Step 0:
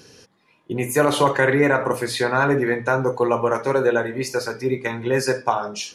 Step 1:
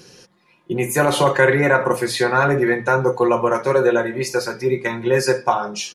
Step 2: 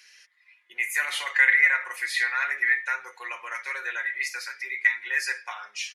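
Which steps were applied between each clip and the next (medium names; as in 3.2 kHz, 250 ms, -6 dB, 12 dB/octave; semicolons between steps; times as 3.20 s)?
comb 5.6 ms, depth 55%; trim +1.5 dB
resonant high-pass 2 kHz, resonance Q 6.6; trim -9 dB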